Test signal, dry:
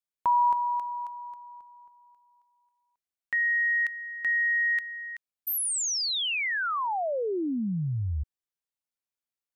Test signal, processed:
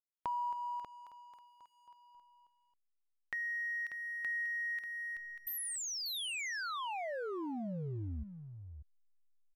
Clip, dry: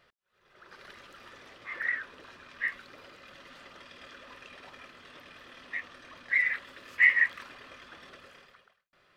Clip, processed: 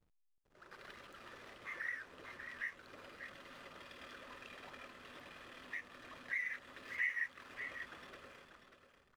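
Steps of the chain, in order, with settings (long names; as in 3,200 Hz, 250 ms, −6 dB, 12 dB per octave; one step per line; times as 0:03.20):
downward compressor 2 to 1, threshold −42 dBFS
slack as between gear wheels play −53 dBFS
single-tap delay 590 ms −9 dB
level −3 dB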